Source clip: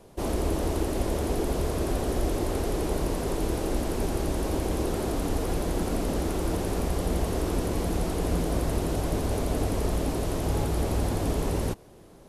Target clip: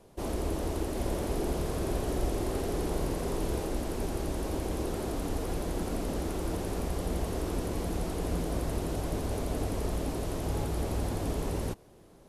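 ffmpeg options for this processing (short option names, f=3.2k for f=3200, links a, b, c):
-filter_complex "[0:a]asettb=1/sr,asplit=3[a][b][c];[a]atrim=end=0.924[d];[b]atrim=start=0.92:end=3.66,asetpts=PTS-STARTPTS,afade=t=in:d=0.004:c=qsin,afade=t=out:st=2.736:d=0.004:c=qsin,asplit=2[e][f];[f]adelay=48,volume=-5.5dB[g];[e][g]amix=inputs=2:normalize=0,atrim=end_sample=120834[h];[c]atrim=start=3.656[i];[d][h]acrossfade=d=0.004:c1=hsin:c2=qsin[j];[j][i]acrossfade=d=0.004:c1=qsin:c2=hsin,volume=-5dB"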